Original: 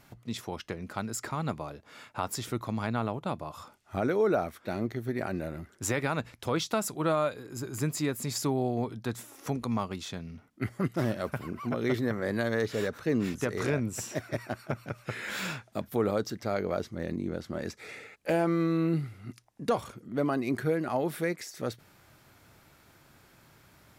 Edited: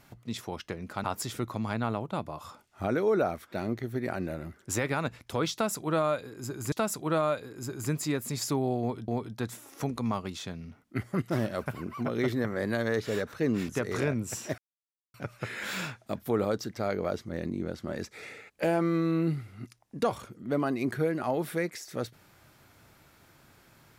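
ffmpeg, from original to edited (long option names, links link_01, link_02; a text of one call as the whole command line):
ffmpeg -i in.wav -filter_complex "[0:a]asplit=6[link_01][link_02][link_03][link_04][link_05][link_06];[link_01]atrim=end=1.042[link_07];[link_02]atrim=start=2.168:end=7.852[link_08];[link_03]atrim=start=6.658:end=9.022[link_09];[link_04]atrim=start=8.738:end=14.24,asetpts=PTS-STARTPTS,afade=type=out:start_time=5.498:duration=0.004:curve=hsin[link_10];[link_05]atrim=start=14.24:end=14.8,asetpts=PTS-STARTPTS,volume=0[link_11];[link_06]atrim=start=14.8,asetpts=PTS-STARTPTS,afade=type=in:duration=0.004:curve=hsin[link_12];[link_07][link_08]acrossfade=duration=0.004:curve1=hsin:curve2=hsin[link_13];[link_13][link_09]acrossfade=duration=0.004:curve1=hsin:curve2=hsin[link_14];[link_10][link_11][link_12]concat=n=3:v=0:a=1[link_15];[link_14][link_15]acrossfade=duration=0.004:curve1=hsin:curve2=hsin" out.wav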